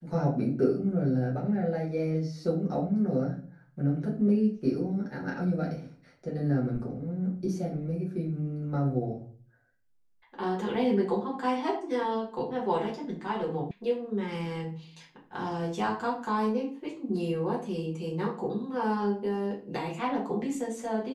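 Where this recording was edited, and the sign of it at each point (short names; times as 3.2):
13.71 sound cut off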